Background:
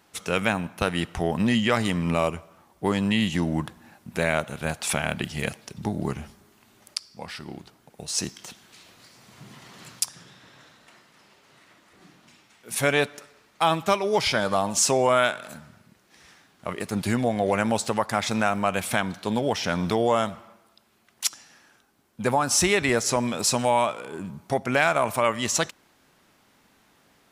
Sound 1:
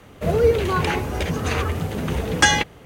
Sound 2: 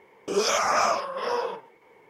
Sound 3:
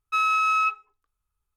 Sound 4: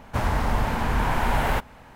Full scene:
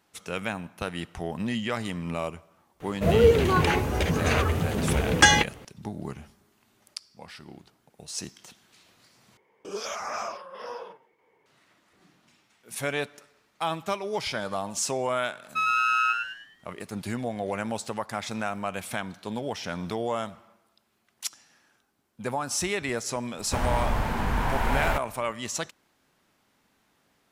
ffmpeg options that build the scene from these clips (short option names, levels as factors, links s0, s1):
-filter_complex "[0:a]volume=0.422[s0];[3:a]asplit=6[s1][s2][s3][s4][s5][s6];[s2]adelay=104,afreqshift=120,volume=0.531[s7];[s3]adelay=208,afreqshift=240,volume=0.202[s8];[s4]adelay=312,afreqshift=360,volume=0.0767[s9];[s5]adelay=416,afreqshift=480,volume=0.0292[s10];[s6]adelay=520,afreqshift=600,volume=0.0111[s11];[s1][s7][s8][s9][s10][s11]amix=inputs=6:normalize=0[s12];[s0]asplit=2[s13][s14];[s13]atrim=end=9.374[s15];[2:a]atrim=end=2.09,asetpts=PTS-STARTPTS,volume=0.299[s16];[s14]atrim=start=11.456[s17];[1:a]atrim=end=2.85,asetpts=PTS-STARTPTS,volume=0.891,afade=t=in:d=0.004:c=hsin,afade=t=out:st=2.846:d=0.004:c=hsin,adelay=2800[s18];[s12]atrim=end=1.56,asetpts=PTS-STARTPTS,volume=0.708,afade=t=in:d=0.004:c=hsin,afade=t=out:st=1.556:d=0.004:c=hsin,adelay=15430[s19];[4:a]atrim=end=1.95,asetpts=PTS-STARTPTS,volume=0.708,afade=t=in:d=0.004:c=hsin,afade=t=out:st=1.946:d=0.004:c=hsin,adelay=23380[s20];[s15][s16]acrossfade=d=0.004:c1=hsin:c2=hsin[s21];[s21][s17]acrossfade=d=0.004:c1=hsin:c2=hsin[s22];[s22][s18][s19][s20]amix=inputs=4:normalize=0"